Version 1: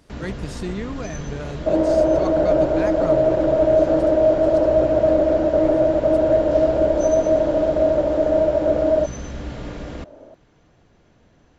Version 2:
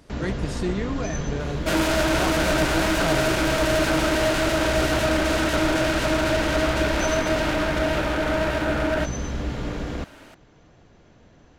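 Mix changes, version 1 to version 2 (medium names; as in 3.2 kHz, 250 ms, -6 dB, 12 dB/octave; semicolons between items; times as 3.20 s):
first sound +3.0 dB; second sound: remove resonant low-pass 570 Hz, resonance Q 3.8; reverb: on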